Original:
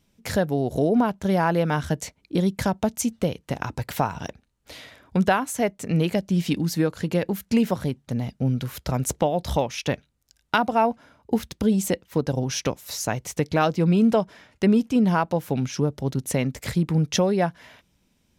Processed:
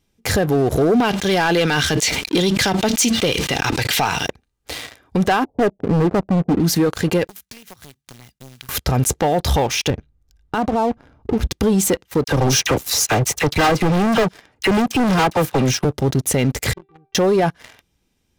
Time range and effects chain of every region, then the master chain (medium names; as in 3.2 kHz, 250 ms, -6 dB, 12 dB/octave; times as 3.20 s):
1.00–4.26 s: frequency weighting D + decay stretcher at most 84 dB/s
5.44–6.60 s: steep low-pass 770 Hz 48 dB/octave + hard clipper -22.5 dBFS
7.27–8.69 s: block-companded coder 5-bit + amplifier tone stack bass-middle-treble 5-5-5 + compression, threshold -42 dBFS
9.90–11.51 s: tilt EQ -3.5 dB/octave + compression 3:1, threshold -27 dBFS
12.24–15.85 s: phase dispersion lows, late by 47 ms, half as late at 1.5 kHz + overload inside the chain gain 26 dB + tape noise reduction on one side only decoder only
16.73–17.15 s: low-pass 1.2 kHz + feedback comb 390 Hz, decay 0.3 s, mix 100%
whole clip: comb 2.5 ms, depth 35%; waveshaping leveller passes 3; peak limiter -15 dBFS; trim +4.5 dB